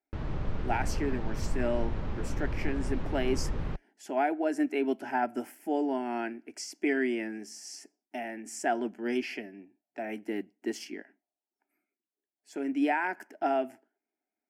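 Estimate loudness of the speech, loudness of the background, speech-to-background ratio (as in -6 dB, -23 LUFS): -33.0 LUFS, -37.0 LUFS, 4.0 dB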